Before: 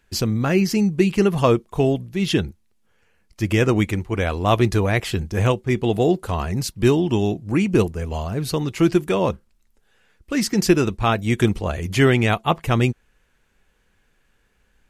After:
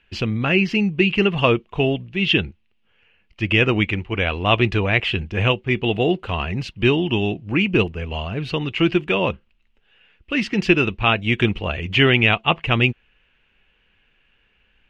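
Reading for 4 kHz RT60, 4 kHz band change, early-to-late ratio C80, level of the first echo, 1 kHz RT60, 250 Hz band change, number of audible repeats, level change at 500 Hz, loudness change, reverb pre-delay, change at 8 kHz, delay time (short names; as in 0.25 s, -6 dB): none, +6.5 dB, none, none, none, -1.5 dB, none, -1.5 dB, +1.0 dB, none, under -15 dB, none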